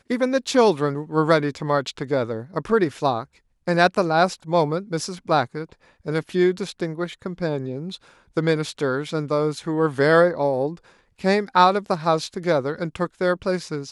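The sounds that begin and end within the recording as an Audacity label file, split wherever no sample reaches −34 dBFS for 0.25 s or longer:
3.670000	5.730000	sound
6.060000	7.960000	sound
8.370000	10.770000	sound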